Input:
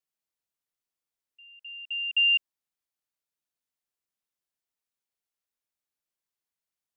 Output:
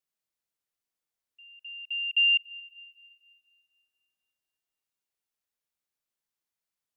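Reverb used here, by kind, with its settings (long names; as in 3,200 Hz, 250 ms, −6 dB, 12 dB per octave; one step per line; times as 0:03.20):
comb and all-pass reverb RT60 2.8 s, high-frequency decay 0.75×, pre-delay 45 ms, DRR 17 dB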